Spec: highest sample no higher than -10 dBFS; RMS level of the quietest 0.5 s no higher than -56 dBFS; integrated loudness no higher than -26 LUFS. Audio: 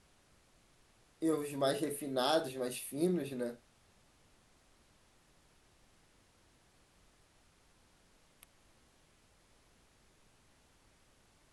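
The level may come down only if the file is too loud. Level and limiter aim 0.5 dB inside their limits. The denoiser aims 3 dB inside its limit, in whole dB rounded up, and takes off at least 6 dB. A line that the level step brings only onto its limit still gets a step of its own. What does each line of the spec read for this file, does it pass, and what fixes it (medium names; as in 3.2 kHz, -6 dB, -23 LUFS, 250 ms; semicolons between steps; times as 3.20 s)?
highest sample -17.5 dBFS: pass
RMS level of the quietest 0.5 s -68 dBFS: pass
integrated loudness -35.5 LUFS: pass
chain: none needed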